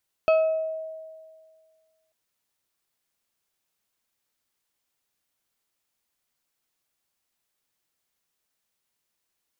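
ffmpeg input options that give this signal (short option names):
-f lavfi -i "aevalsrc='0.188*pow(10,-3*t/1.87)*sin(2*PI*638*t+0.52*pow(10,-3*t/0.76)*sin(2*PI*3.02*638*t))':d=1.84:s=44100"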